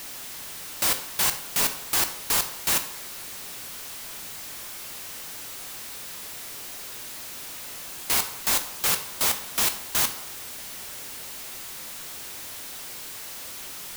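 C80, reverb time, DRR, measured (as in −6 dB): 15.0 dB, 0.60 s, 8.0 dB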